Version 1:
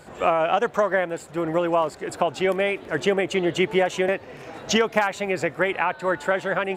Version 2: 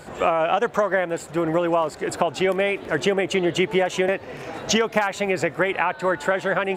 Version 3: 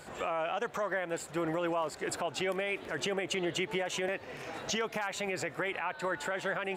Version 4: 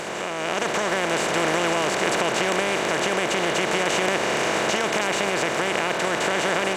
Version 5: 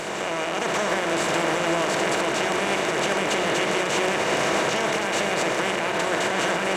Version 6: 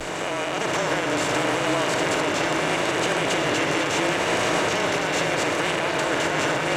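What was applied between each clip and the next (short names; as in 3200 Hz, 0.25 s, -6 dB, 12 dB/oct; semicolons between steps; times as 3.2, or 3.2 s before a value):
compressor 2:1, threshold -25 dBFS, peak gain reduction 6 dB; gain +5 dB
tilt shelf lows -3 dB; limiter -15.5 dBFS, peak gain reduction 11 dB; gain -7.5 dB
per-bin compression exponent 0.2; AGC gain up to 9.5 dB; gain -5.5 dB
limiter -14.5 dBFS, peak gain reduction 6.5 dB; on a send at -3.5 dB: reverb RT60 2.2 s, pre-delay 3 ms
vibrato 0.74 Hz 48 cents; delay with a stepping band-pass 0.504 s, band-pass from 3500 Hz, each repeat -1.4 oct, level -4.5 dB; frequency shift -33 Hz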